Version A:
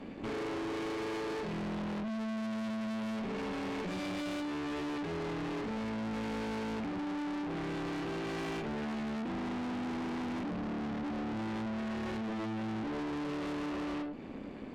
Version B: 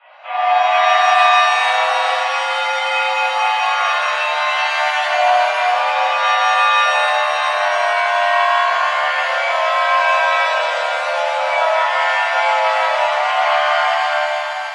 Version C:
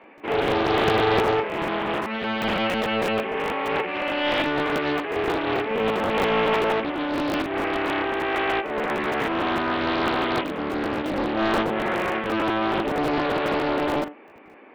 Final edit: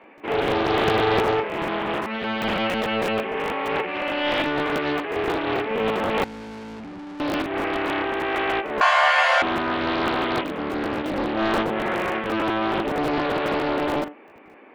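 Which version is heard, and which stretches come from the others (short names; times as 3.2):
C
6.24–7.2 from A
8.81–9.42 from B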